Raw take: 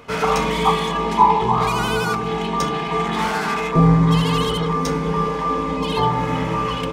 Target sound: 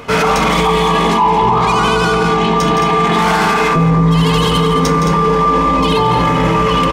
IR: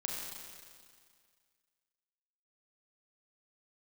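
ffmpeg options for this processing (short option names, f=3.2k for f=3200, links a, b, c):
-filter_complex "[0:a]acontrast=24,asettb=1/sr,asplit=3[a][b][c];[a]atrim=end=1.244[d];[b]atrim=start=1.24:end=2.6,asetpts=PTS-STARTPTS,afade=t=in:d=0.004:c=qsin,afade=t=out:st=1.356:d=0.004:c=qsin,lowpass=8.3k[e];[c]atrim=start=2.596[f];[d][e]acrossfade=d=0.004:c1=hsin:c2=qsin[g];[g][f]acrossfade=d=0.004:c1=qsin:c2=hsin,asplit=2[h][i];[i]aecho=0:1:166.2|218.7:0.355|0.398[j];[h][j]amix=inputs=2:normalize=0,alimiter=limit=-11.5dB:level=0:latency=1:release=12,volume=6.5dB"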